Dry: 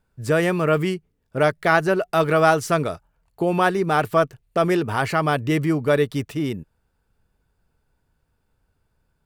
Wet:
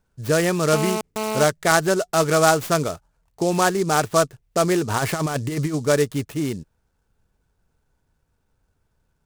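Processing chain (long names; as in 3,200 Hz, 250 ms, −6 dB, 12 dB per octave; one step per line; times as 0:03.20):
0:00.73–0:01.44: phone interference −25 dBFS
0:04.90–0:05.75: compressor whose output falls as the input rises −22 dBFS, ratio −0.5
short delay modulated by noise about 6,000 Hz, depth 0.05 ms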